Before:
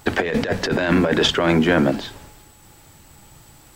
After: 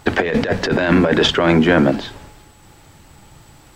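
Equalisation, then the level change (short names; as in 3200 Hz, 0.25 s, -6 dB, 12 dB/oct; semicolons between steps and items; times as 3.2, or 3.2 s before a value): high shelf 7900 Hz -11 dB; +3.5 dB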